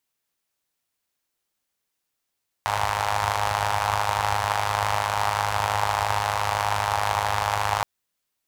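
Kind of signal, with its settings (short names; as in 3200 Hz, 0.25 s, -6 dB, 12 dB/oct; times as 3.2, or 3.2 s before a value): four-cylinder engine model, steady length 5.17 s, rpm 3100, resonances 85/860 Hz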